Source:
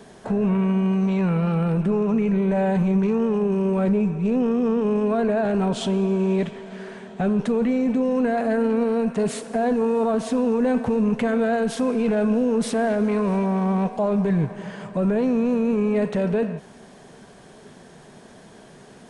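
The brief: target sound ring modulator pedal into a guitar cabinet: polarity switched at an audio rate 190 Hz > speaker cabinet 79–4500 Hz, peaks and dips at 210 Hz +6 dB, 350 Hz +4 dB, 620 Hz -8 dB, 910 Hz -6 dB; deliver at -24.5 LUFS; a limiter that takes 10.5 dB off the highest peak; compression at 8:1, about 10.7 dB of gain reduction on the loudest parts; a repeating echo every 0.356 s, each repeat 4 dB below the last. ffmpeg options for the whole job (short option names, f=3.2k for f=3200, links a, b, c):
-af "acompressor=threshold=-29dB:ratio=8,alimiter=level_in=4.5dB:limit=-24dB:level=0:latency=1,volume=-4.5dB,aecho=1:1:356|712|1068|1424|1780|2136|2492|2848|3204:0.631|0.398|0.25|0.158|0.0994|0.0626|0.0394|0.0249|0.0157,aeval=exprs='val(0)*sgn(sin(2*PI*190*n/s))':c=same,highpass=79,equalizer=f=210:t=q:w=4:g=6,equalizer=f=350:t=q:w=4:g=4,equalizer=f=620:t=q:w=4:g=-8,equalizer=f=910:t=q:w=4:g=-6,lowpass=f=4.5k:w=0.5412,lowpass=f=4.5k:w=1.3066,volume=9dB"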